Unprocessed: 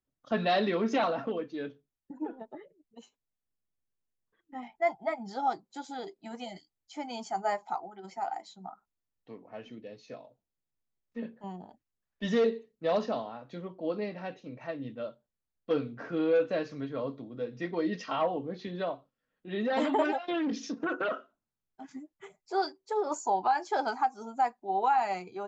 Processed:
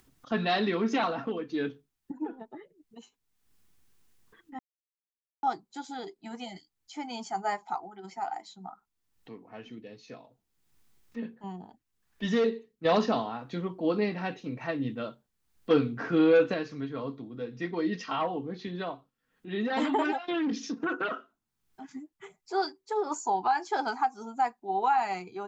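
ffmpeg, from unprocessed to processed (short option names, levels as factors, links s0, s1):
-filter_complex "[0:a]asettb=1/sr,asplit=3[s0][s1][s2];[s0]atrim=end=1.494[s3];[s1]atrim=start=1.49:end=2.12,asetpts=PTS-STARTPTS,afade=t=in:d=0.004:c=qsin,afade=t=out:st=0.626:d=0.004:c=qsin,acontrast=29[s4];[s2]atrim=start=2.116[s5];[s3][s4]acrossfade=d=0.004:c1=hsin:c2=qsin[s6];[s6][s5]acrossfade=d=0.004:c1=qsin:c2=hsin,asplit=5[s7][s8][s9][s10][s11];[s7]atrim=end=4.59,asetpts=PTS-STARTPTS,afade=t=out:st=4.586:d=0.004:c=hsin[s12];[s8]atrim=start=4.59:end=5.43,asetpts=PTS-STARTPTS,volume=0[s13];[s9]atrim=start=5.43:end=12.852,asetpts=PTS-STARTPTS,afade=t=in:d=0.004:c=hsin[s14];[s10]atrim=start=12.848:end=16.542,asetpts=PTS-STARTPTS,volume=2[s15];[s11]atrim=start=16.538[s16];[s12][s13][s14]concat=n=3:v=0:a=1[s17];[s17][s15]acrossfade=d=0.004:c1=hsin:c2=hsin[s18];[s18][s16]acrossfade=d=0.004:c1=hsin:c2=hsin,equalizer=f=580:t=o:w=0.36:g=-10.5,acompressor=mode=upward:threshold=0.00355:ratio=2.5,volume=1.26"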